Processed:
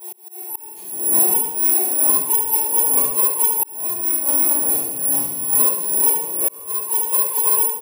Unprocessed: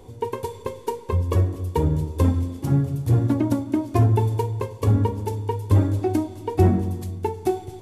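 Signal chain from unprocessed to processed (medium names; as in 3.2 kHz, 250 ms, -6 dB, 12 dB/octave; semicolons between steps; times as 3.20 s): reverse the whole clip; cabinet simulation 270–5800 Hz, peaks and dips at 640 Hz +5 dB, 1 kHz +6 dB, 2.6 kHz +6 dB, 4 kHz -6 dB; harmonic-percussive split percussive +9 dB; on a send: delay 71 ms -7 dB; on the sum: compression 2.5:1, threshold -20 dBFS, peak gain reduction 7 dB; careless resampling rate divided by 4×, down none, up zero stuff; simulated room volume 200 m³, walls mixed, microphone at 4.4 m; slow attack 653 ms; tilt EQ +2.5 dB/octave; trim -17 dB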